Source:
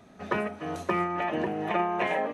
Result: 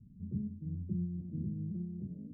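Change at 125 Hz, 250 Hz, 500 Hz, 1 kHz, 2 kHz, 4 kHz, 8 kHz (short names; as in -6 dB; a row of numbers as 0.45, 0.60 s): +3.0 dB, -5.5 dB, -27.5 dB, under -40 dB, under -40 dB, under -40 dB, under -25 dB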